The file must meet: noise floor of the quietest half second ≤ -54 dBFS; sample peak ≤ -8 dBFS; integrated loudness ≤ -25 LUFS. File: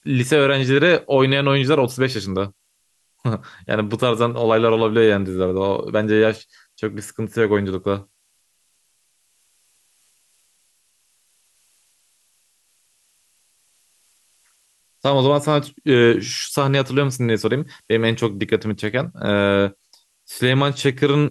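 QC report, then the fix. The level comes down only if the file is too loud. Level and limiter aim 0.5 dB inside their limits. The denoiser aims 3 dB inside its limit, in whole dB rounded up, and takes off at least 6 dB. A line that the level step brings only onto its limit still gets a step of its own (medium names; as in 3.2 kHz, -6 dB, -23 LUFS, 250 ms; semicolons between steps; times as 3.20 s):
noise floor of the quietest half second -66 dBFS: pass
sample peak -4.5 dBFS: fail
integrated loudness -19.0 LUFS: fail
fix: trim -6.5 dB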